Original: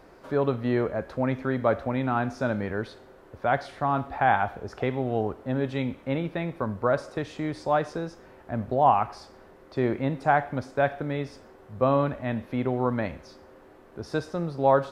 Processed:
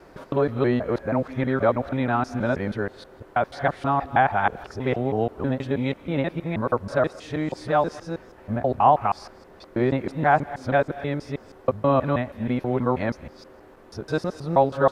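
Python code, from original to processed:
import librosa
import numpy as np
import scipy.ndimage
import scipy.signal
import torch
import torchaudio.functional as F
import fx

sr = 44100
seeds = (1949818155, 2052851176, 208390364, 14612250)

y = fx.local_reverse(x, sr, ms=160.0)
y = y * 10.0 ** (3.0 / 20.0)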